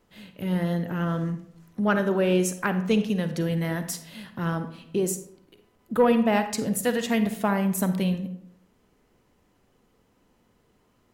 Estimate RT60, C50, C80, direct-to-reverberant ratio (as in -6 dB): 0.70 s, 10.5 dB, 14.0 dB, 9.0 dB